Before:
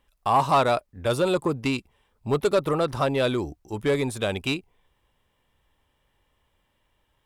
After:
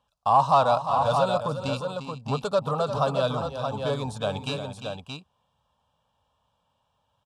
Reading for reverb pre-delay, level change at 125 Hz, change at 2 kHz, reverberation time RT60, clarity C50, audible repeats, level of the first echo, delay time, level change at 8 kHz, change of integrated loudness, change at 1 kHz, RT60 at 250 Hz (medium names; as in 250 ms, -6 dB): no reverb, 0.0 dB, -6.0 dB, no reverb, no reverb, 3, -10.0 dB, 350 ms, -5.0 dB, -0.5 dB, +2.5 dB, no reverb